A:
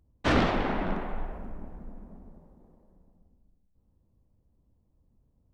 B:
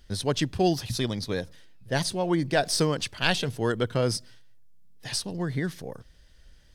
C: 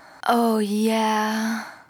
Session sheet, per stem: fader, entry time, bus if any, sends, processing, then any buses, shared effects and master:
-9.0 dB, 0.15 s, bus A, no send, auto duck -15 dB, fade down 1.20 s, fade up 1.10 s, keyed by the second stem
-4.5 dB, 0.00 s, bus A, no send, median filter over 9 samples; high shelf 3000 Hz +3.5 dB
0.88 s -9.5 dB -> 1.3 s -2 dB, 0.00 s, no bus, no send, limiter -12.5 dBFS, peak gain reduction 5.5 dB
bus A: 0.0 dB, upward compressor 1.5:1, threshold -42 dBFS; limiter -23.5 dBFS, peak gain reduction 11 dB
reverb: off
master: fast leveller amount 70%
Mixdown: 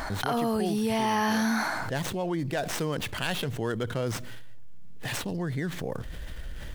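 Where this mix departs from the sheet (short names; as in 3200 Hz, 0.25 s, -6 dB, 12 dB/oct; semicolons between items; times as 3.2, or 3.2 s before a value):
stem A: muted; stem B -4.5 dB -> -13.0 dB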